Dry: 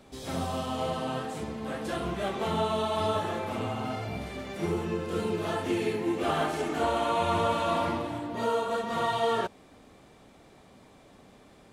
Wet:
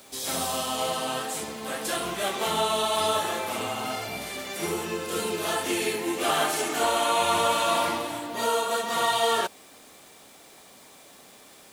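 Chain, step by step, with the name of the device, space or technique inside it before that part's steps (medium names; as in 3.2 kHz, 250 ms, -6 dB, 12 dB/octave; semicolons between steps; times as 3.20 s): turntable without a phono preamp (RIAA curve recording; white noise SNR 32 dB); trim +4 dB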